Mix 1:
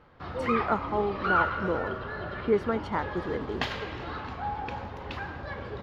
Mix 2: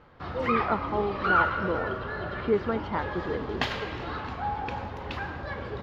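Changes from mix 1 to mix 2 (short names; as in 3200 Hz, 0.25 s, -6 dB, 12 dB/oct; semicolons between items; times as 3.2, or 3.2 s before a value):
speech: add air absorption 150 m; reverb: on, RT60 0.90 s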